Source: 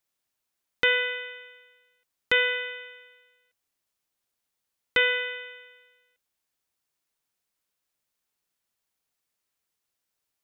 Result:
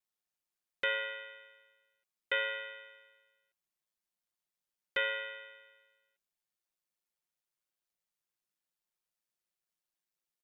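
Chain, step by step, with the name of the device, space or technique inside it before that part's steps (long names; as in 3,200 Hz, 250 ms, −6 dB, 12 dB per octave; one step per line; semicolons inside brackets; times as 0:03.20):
ring-modulated robot voice (ring modulation 54 Hz; comb filter 5.6 ms, depth 63%)
level −8 dB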